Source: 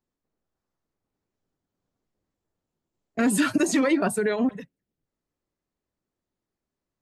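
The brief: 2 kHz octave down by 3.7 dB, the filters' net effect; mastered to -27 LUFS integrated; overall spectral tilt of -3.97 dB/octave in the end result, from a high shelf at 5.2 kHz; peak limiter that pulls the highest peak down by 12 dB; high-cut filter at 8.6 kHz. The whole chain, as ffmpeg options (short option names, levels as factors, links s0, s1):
-af "lowpass=8600,equalizer=f=2000:t=o:g=-5.5,highshelf=f=5200:g=5,volume=1.78,alimiter=limit=0.112:level=0:latency=1"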